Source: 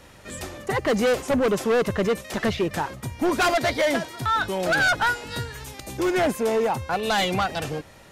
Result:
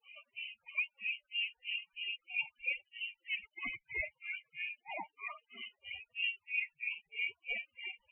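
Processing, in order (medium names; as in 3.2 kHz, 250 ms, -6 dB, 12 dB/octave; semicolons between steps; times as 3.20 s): bass shelf 240 Hz -5.5 dB; reverse; compression 10:1, threshold -31 dBFS, peak gain reduction 12.5 dB; reverse; phaser 1.4 Hz, delay 3.4 ms, feedback 45%; on a send: bouncing-ball echo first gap 220 ms, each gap 0.6×, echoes 5; on the sum: granulator 249 ms, grains 3.1 per s, pitch spread up and down by 7 st; static phaser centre 370 Hz, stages 6; added noise white -58 dBFS; loudest bins only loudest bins 16; distance through air 140 m; frequency inversion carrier 3 kHz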